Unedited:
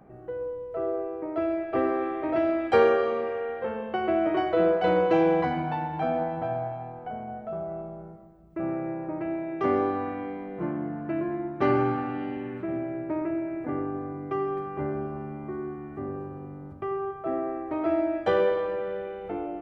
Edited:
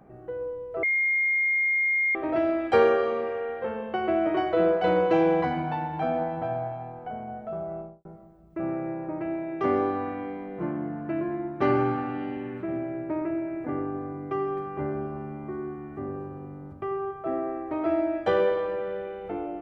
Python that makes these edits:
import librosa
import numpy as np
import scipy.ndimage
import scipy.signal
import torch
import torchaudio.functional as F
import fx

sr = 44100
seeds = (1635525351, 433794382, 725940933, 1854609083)

y = fx.studio_fade_out(x, sr, start_s=7.76, length_s=0.29)
y = fx.edit(y, sr, fx.bleep(start_s=0.83, length_s=1.32, hz=2130.0, db=-21.0), tone=tone)